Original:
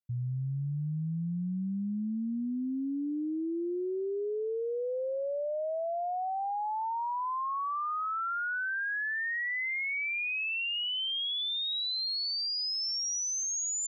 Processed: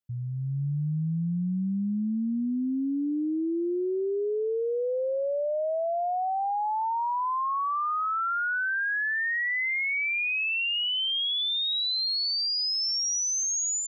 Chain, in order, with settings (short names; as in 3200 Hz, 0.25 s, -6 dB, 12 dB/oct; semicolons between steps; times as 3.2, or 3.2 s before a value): AGC gain up to 5 dB